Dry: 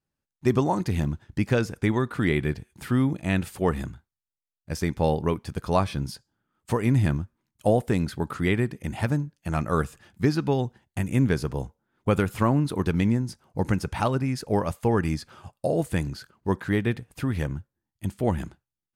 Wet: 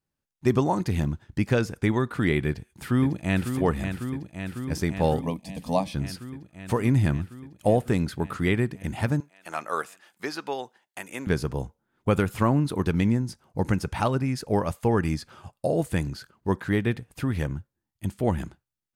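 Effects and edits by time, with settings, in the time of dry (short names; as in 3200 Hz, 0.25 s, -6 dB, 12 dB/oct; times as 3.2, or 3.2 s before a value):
2.47–3.54 echo throw 0.55 s, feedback 80%, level -7.5 dB
5.21–5.94 fixed phaser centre 380 Hz, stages 6
9.2–11.27 HPF 590 Hz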